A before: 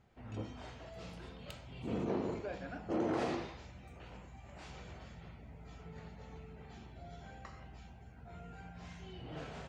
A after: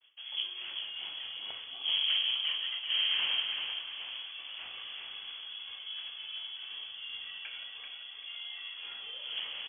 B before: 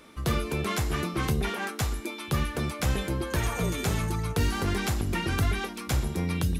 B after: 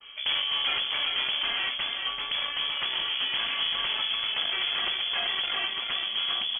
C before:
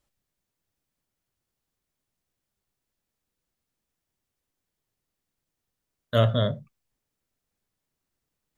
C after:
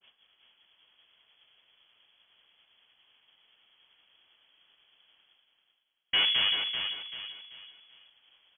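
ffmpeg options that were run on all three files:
-filter_complex "[0:a]acrossover=split=180|860[a][b][c];[b]acontrast=87[d];[a][d][c]amix=inputs=3:normalize=0,aeval=exprs='(tanh(28.2*val(0)+0.75)-tanh(0.75))/28.2':c=same,areverse,acompressor=mode=upward:threshold=-44dB:ratio=2.5,areverse,highpass=95,agate=range=-33dB:threshold=-58dB:ratio=3:detection=peak,aecho=1:1:387|774|1161|1548:0.531|0.175|0.0578|0.0191,lowpass=f=3k:t=q:w=0.5098,lowpass=f=3k:t=q:w=0.6013,lowpass=f=3k:t=q:w=0.9,lowpass=f=3k:t=q:w=2.563,afreqshift=-3500,adynamicequalizer=threshold=0.00501:dfrequency=1800:dqfactor=0.7:tfrequency=1800:tqfactor=0.7:attack=5:release=100:ratio=0.375:range=2:mode=cutabove:tftype=highshelf,volume=6.5dB"

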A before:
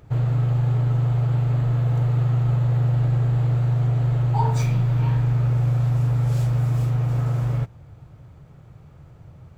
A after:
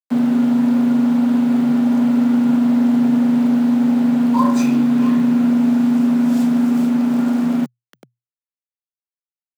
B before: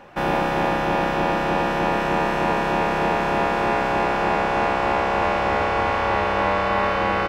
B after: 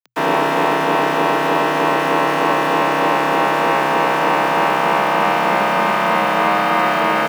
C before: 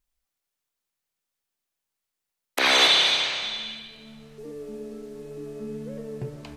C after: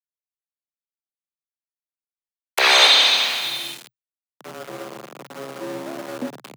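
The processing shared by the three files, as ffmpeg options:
-af "aeval=exprs='val(0)*gte(abs(val(0)),0.0188)':c=same,afreqshift=120,volume=5dB"

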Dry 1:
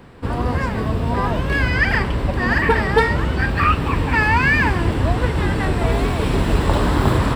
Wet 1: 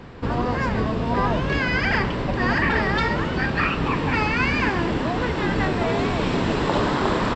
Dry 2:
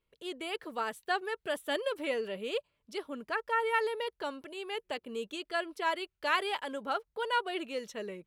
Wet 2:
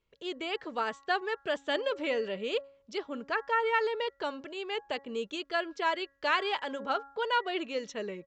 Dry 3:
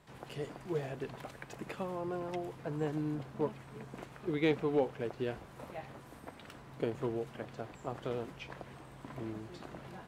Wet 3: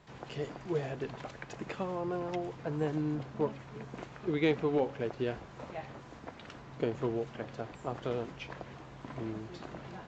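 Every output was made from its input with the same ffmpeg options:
-filter_complex "[0:a]apsyclip=7dB,bandreject=f=276.6:t=h:w=4,bandreject=f=553.2:t=h:w=4,bandreject=f=829.8:t=h:w=4,bandreject=f=1.1064k:t=h:w=4,bandreject=f=1.383k:t=h:w=4,bandreject=f=1.6596k:t=h:w=4,bandreject=f=1.9362k:t=h:w=4,asplit=2[a][b];[b]acompressor=threshold=-21dB:ratio=6,volume=-2.5dB[c];[a][c]amix=inputs=2:normalize=0,afftfilt=real='re*lt(hypot(re,im),2.24)':imag='im*lt(hypot(re,im),2.24)':win_size=1024:overlap=0.75,aresample=16000,aresample=44100,volume=-9dB"

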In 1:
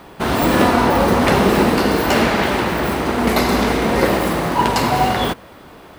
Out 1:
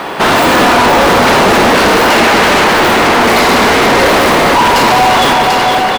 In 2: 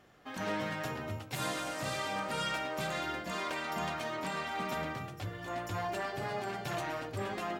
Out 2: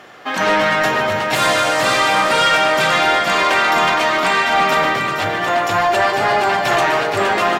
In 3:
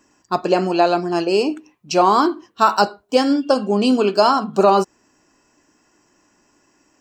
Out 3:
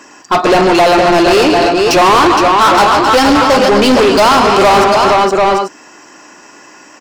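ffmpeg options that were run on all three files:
-filter_complex "[0:a]aecho=1:1:127|150|261|466|743|840:0.119|0.224|0.178|0.335|0.266|0.112,asplit=2[a][b];[b]highpass=f=720:p=1,volume=32dB,asoftclip=type=tanh:threshold=0dB[c];[a][c]amix=inputs=2:normalize=0,lowpass=f=3.7k:p=1,volume=-6dB,volume=-1dB"

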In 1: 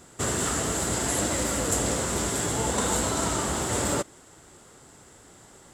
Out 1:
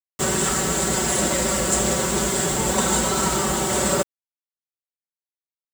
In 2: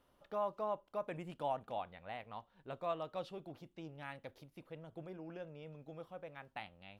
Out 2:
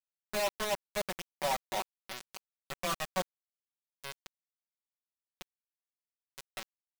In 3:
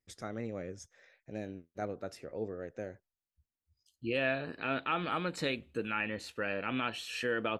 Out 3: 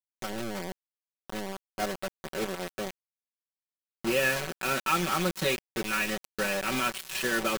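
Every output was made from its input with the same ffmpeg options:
-af "aresample=22050,aresample=44100,acrusher=bits=5:mix=0:aa=0.000001,aecho=1:1:5.3:0.85,volume=3dB"

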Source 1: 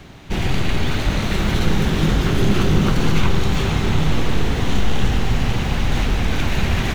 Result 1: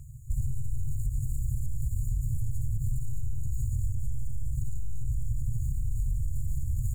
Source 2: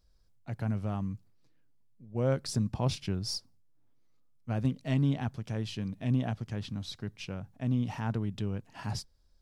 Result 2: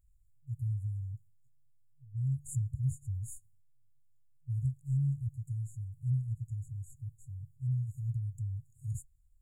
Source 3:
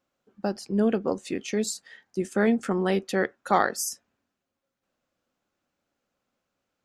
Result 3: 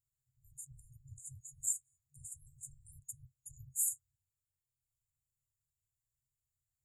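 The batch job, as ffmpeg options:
-af "afftfilt=real='re*(1-between(b*sr/4096,140,6700))':imag='im*(1-between(b*sr/4096,140,6700))':win_size=4096:overlap=0.75,alimiter=limit=-17dB:level=0:latency=1:release=88,acompressor=threshold=-24dB:ratio=6"

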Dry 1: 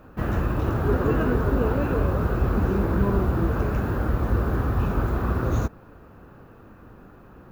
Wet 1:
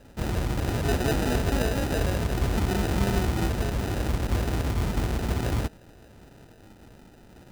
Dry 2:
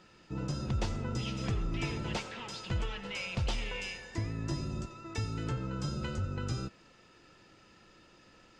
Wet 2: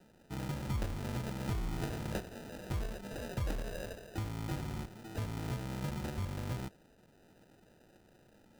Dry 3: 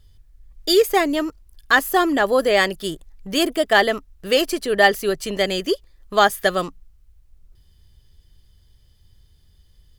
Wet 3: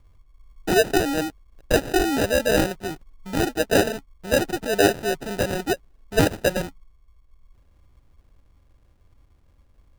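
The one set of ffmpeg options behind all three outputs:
-af "acrusher=samples=40:mix=1:aa=0.000001,volume=-3dB"

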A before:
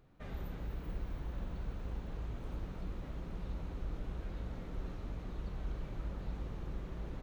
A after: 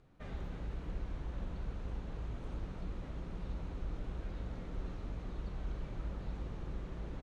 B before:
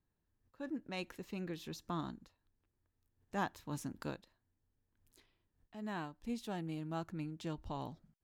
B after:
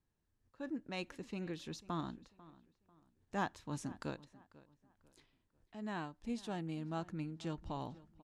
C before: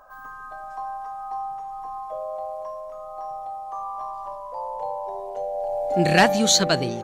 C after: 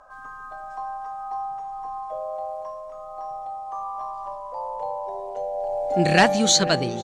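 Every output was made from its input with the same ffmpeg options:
-filter_complex "[0:a]lowpass=f=9.9k:w=0.5412,lowpass=f=9.9k:w=1.3066,asplit=2[a][b];[b]adelay=494,lowpass=f=3.1k:p=1,volume=-19.5dB,asplit=2[c][d];[d]adelay=494,lowpass=f=3.1k:p=1,volume=0.34,asplit=2[e][f];[f]adelay=494,lowpass=f=3.1k:p=1,volume=0.34[g];[a][c][e][g]amix=inputs=4:normalize=0"

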